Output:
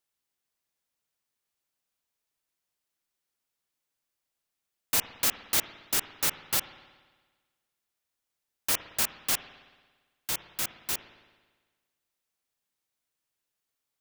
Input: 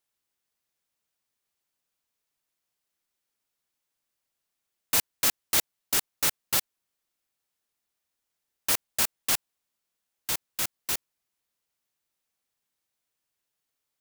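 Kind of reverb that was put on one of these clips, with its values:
spring reverb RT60 1.4 s, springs 56 ms, chirp 80 ms, DRR 11.5 dB
level −2 dB

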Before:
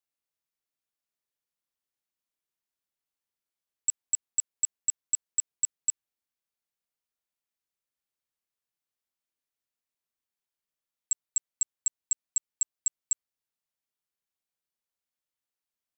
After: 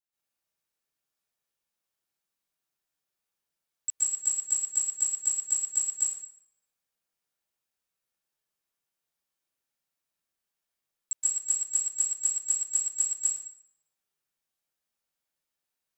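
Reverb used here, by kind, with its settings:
dense smooth reverb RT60 0.69 s, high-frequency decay 0.85×, pre-delay 115 ms, DRR −9.5 dB
level −5 dB

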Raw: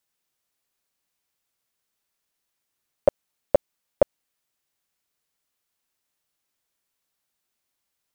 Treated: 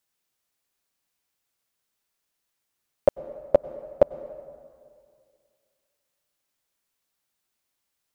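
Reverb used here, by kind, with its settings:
dense smooth reverb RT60 2.2 s, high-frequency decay 0.6×, pre-delay 85 ms, DRR 15 dB

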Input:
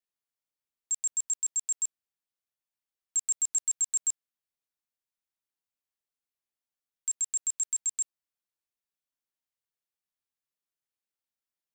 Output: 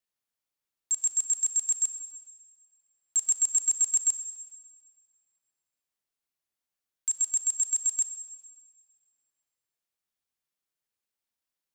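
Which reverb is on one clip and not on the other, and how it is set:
four-comb reverb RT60 1.6 s, combs from 28 ms, DRR 9.5 dB
level +2.5 dB

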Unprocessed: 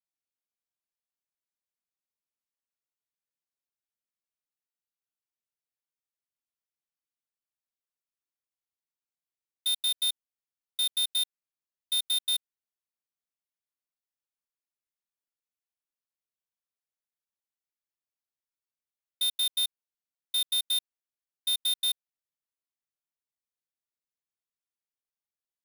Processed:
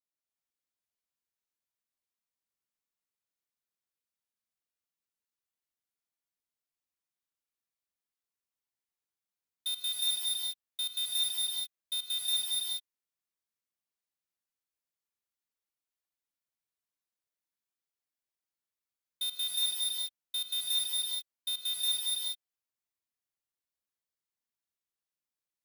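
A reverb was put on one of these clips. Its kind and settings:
reverb whose tail is shaped and stops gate 440 ms rising, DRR −4 dB
level −6 dB

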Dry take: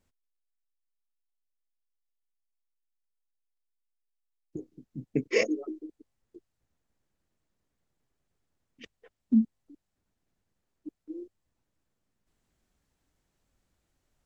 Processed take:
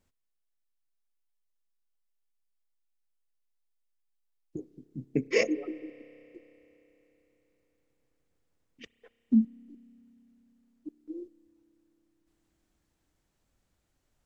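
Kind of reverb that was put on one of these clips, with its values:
spring reverb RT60 3.9 s, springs 30 ms, chirp 75 ms, DRR 18.5 dB

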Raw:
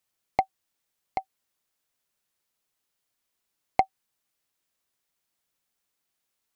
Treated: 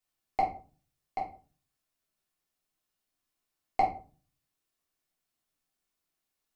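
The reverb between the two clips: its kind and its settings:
rectangular room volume 240 cubic metres, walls furnished, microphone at 3.3 metres
level −10 dB

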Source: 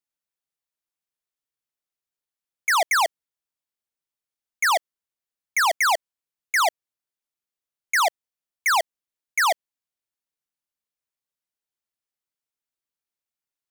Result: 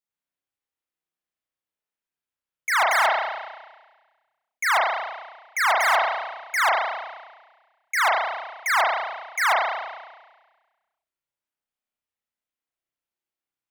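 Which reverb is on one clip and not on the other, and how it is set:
spring reverb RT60 1.3 s, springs 32 ms, chirp 75 ms, DRR −5.5 dB
level −5 dB

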